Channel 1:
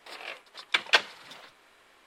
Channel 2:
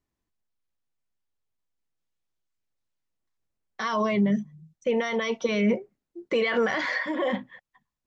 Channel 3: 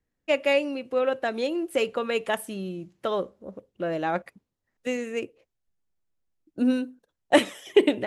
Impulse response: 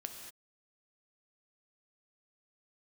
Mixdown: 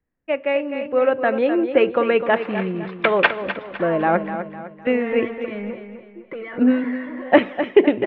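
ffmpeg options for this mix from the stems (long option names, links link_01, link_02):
-filter_complex "[0:a]adelay=2300,volume=-1dB,asplit=3[link_01][link_02][link_03];[link_02]volume=-16dB[link_04];[link_03]volume=-10.5dB[link_05];[1:a]acompressor=threshold=-27dB:ratio=5,asoftclip=type=tanh:threshold=-26dB,volume=-8dB,asplit=2[link_06][link_07];[link_07]volume=-8.5dB[link_08];[2:a]volume=0dB,asplit=3[link_09][link_10][link_11];[link_10]volume=-19.5dB[link_12];[link_11]volume=-9.5dB[link_13];[3:a]atrim=start_sample=2205[link_14];[link_04][link_12]amix=inputs=2:normalize=0[link_15];[link_15][link_14]afir=irnorm=-1:irlink=0[link_16];[link_05][link_08][link_13]amix=inputs=3:normalize=0,aecho=0:1:254|508|762|1016|1270:1|0.39|0.152|0.0593|0.0231[link_17];[link_01][link_06][link_09][link_16][link_17]amix=inputs=5:normalize=0,lowpass=frequency=2400:width=0.5412,lowpass=frequency=2400:width=1.3066,dynaudnorm=framelen=620:gausssize=3:maxgain=10dB"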